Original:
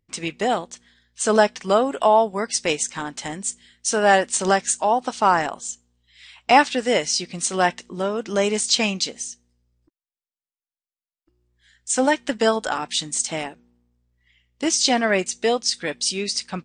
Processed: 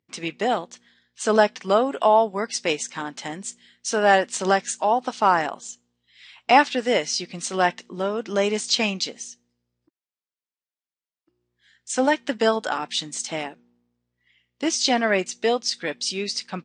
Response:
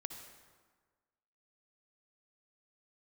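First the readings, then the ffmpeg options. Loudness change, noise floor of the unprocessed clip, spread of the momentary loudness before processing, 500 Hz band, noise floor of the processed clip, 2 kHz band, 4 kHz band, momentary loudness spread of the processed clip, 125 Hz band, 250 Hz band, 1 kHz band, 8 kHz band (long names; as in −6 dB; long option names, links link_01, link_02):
−1.5 dB, below −85 dBFS, 12 LU, −1.0 dB, below −85 dBFS, −1.0 dB, −2.0 dB, 14 LU, −2.5 dB, −1.5 dB, −1.0 dB, −6.0 dB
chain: -af "highpass=150,lowpass=5900,volume=-1dB"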